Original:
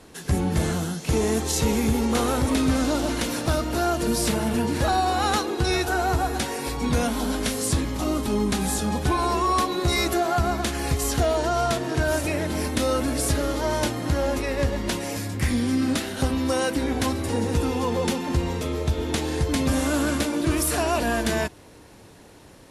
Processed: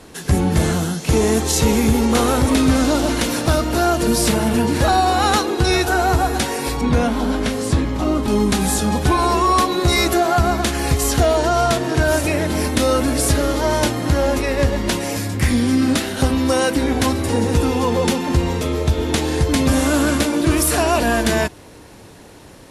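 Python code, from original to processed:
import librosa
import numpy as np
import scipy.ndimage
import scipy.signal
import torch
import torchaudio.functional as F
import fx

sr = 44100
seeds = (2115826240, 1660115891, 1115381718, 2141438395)

y = fx.lowpass(x, sr, hz=2500.0, slope=6, at=(6.81, 8.28))
y = y * librosa.db_to_amplitude(6.5)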